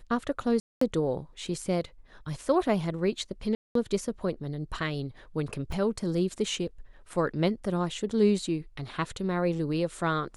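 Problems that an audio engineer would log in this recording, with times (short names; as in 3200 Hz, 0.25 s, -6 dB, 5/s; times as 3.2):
0.6–0.81 gap 0.214 s
3.55–3.75 gap 0.203 s
5.72 gap 4 ms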